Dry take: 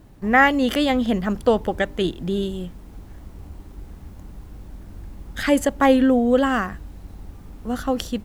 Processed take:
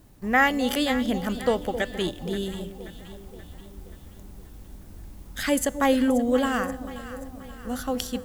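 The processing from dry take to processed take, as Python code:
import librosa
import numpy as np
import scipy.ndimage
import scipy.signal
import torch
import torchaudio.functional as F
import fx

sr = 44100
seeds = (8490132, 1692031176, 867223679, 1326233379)

p1 = fx.high_shelf(x, sr, hz=4500.0, db=11.0)
p2 = fx.comb_fb(p1, sr, f0_hz=250.0, decay_s=1.2, harmonics='all', damping=0.0, mix_pct=50)
y = p2 + fx.echo_alternate(p2, sr, ms=265, hz=810.0, feedback_pct=71, wet_db=-11, dry=0)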